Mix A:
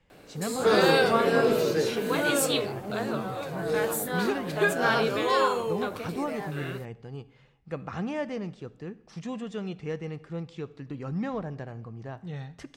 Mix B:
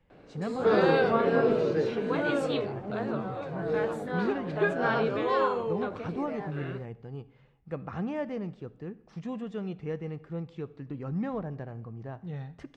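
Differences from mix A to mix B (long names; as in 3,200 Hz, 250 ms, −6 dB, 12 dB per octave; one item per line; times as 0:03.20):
speech: remove high-frequency loss of the air 80 metres
master: add head-to-tape spacing loss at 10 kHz 29 dB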